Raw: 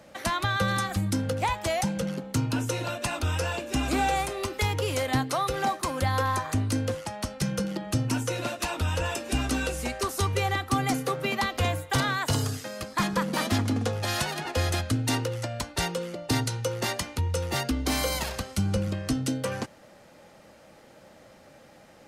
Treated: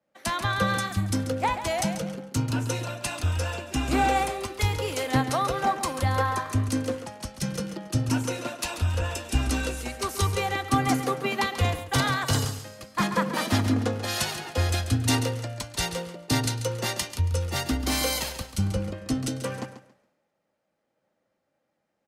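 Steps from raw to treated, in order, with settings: feedback delay 139 ms, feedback 37%, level -8 dB; three bands expanded up and down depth 100%

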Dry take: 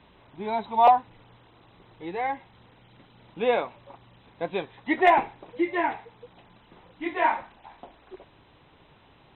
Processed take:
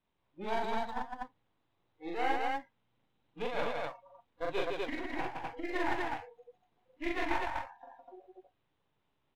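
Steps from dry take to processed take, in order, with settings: partial rectifier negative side -12 dB; spectral noise reduction 23 dB; compressor with a negative ratio -29 dBFS, ratio -0.5; loudspeakers at several distances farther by 14 m -1 dB, 55 m -3 dB, 85 m -1 dB; trim -7 dB

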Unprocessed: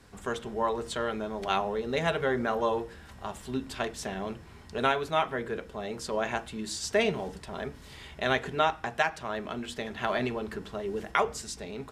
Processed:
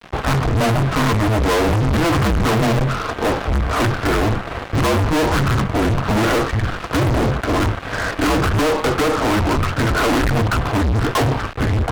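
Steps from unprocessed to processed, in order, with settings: mistuned SSB -330 Hz 290–2000 Hz; low-pass that closes with the level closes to 740 Hz, closed at -23 dBFS; fuzz box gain 51 dB, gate -57 dBFS; trim -2 dB

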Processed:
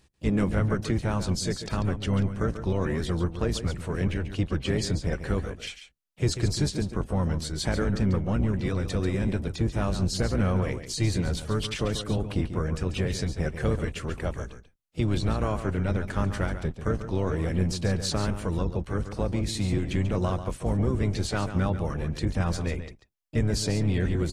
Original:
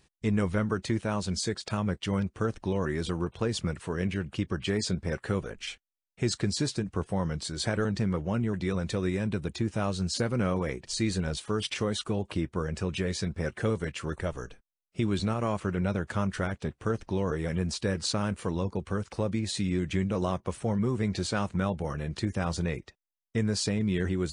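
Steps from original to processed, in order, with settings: octave divider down 1 oct, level +1 dB; delay 140 ms -10.5 dB; harmony voices +5 st -13 dB

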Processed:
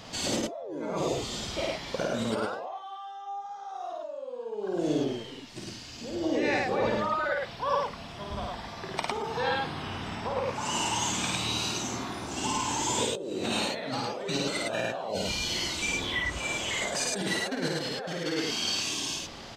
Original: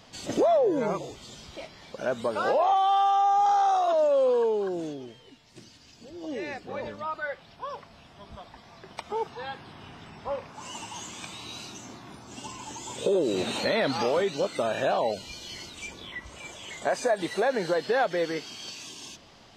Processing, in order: compressor with a negative ratio -35 dBFS, ratio -1; loudspeakers at several distances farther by 18 m -3 dB, 36 m -1 dB

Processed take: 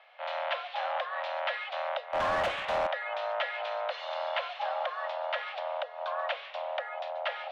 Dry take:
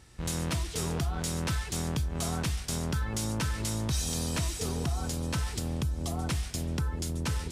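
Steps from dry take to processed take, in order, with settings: mistuned SSB +380 Hz 220–3000 Hz; 2.13–2.87 s: overdrive pedal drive 23 dB, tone 1.3 kHz, clips at -24.5 dBFS; trim +4.5 dB

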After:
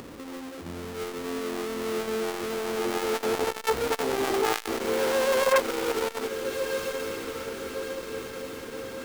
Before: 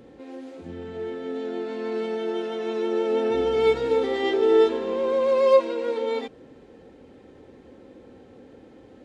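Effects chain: square wave that keeps the level; upward compressor, threshold -34 dBFS; echo that smears into a reverb 1337 ms, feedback 56%, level -11 dB; transformer saturation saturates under 1.1 kHz; trim -3.5 dB

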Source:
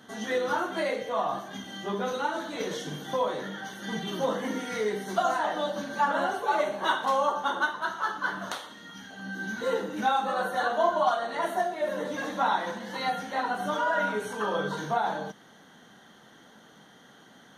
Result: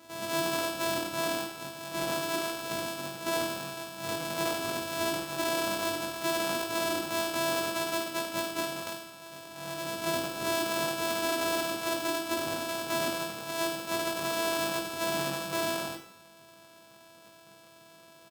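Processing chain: sorted samples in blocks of 128 samples; speed mistake 25 fps video run at 24 fps; peak limiter -19 dBFS, peak gain reduction 8 dB; high-pass 250 Hz 6 dB/octave; peaking EQ 1.9 kHz -8 dB 0.2 oct; reverse bouncing-ball echo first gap 20 ms, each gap 1.5×, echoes 5

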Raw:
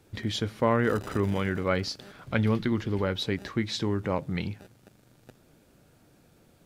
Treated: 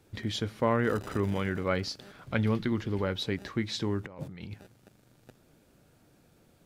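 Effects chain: 4.06–4.54 s: compressor with a negative ratio -40 dBFS, ratio -1; trim -2.5 dB

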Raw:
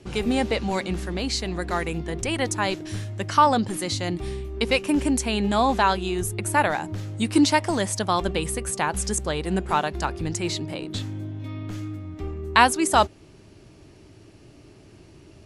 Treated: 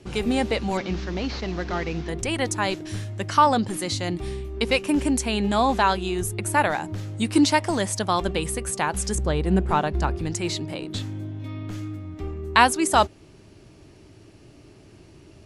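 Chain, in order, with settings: 0.77–2.09 s: one-bit delta coder 32 kbps, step -36.5 dBFS; 9.15–10.19 s: tilt EQ -2 dB/octave

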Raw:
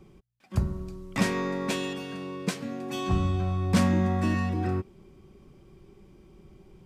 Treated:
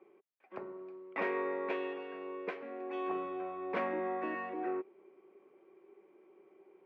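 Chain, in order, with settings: Chebyshev band-pass 380–2300 Hz, order 3; peaking EQ 1.6 kHz -5 dB 2.8 oct

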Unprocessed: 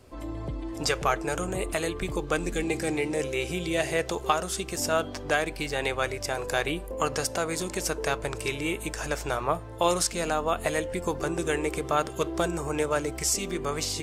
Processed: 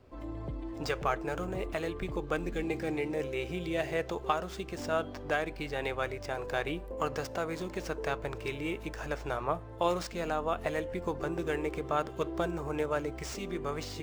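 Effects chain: median filter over 5 samples; treble shelf 3.4 kHz -7.5 dB; trim -4.5 dB

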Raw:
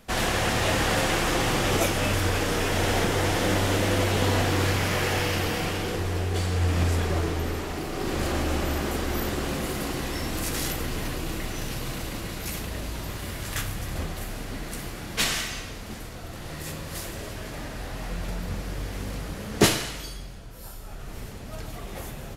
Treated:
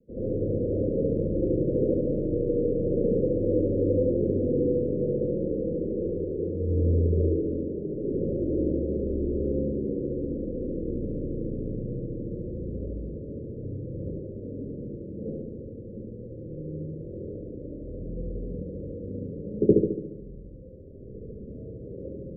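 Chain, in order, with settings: steep low-pass 540 Hz 96 dB/octave; tilt EQ +3.5 dB/octave; reverberation, pre-delay 70 ms, DRR -5.5 dB

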